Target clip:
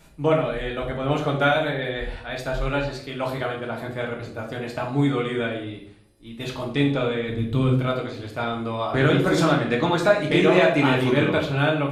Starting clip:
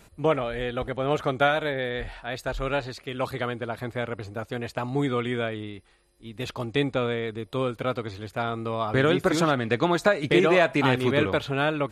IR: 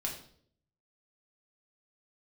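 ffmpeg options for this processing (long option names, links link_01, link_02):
-filter_complex "[0:a]asplit=3[link_01][link_02][link_03];[link_01]afade=type=out:start_time=7.28:duration=0.02[link_04];[link_02]asubboost=boost=5.5:cutoff=230,afade=type=in:start_time=7.28:duration=0.02,afade=type=out:start_time=7.7:duration=0.02[link_05];[link_03]afade=type=in:start_time=7.7:duration=0.02[link_06];[link_04][link_05][link_06]amix=inputs=3:normalize=0[link_07];[1:a]atrim=start_sample=2205[link_08];[link_07][link_08]afir=irnorm=-1:irlink=0"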